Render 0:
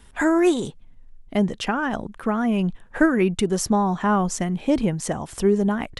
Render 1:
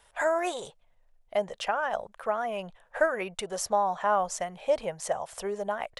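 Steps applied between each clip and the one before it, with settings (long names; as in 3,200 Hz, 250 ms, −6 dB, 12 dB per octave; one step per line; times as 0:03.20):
low shelf with overshoot 410 Hz −12.5 dB, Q 3
level −6 dB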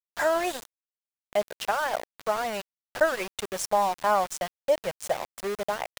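centre clipping without the shift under −32.5 dBFS
level +2 dB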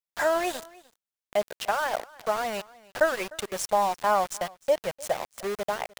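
single-tap delay 303 ms −22.5 dB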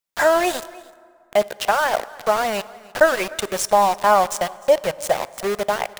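dense smooth reverb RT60 2.2 s, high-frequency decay 0.55×, DRR 18.5 dB
level +8 dB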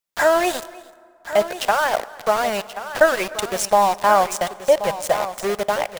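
single-tap delay 1,080 ms −12.5 dB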